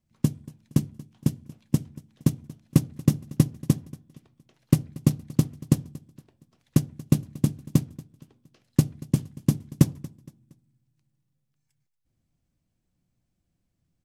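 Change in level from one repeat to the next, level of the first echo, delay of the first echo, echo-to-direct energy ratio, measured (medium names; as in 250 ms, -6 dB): -8.0 dB, -20.5 dB, 233 ms, -20.0 dB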